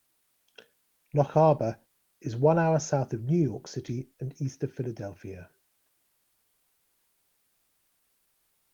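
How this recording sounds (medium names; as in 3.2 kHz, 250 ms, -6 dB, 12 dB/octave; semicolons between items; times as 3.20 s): a quantiser's noise floor 12-bit, dither triangular; Opus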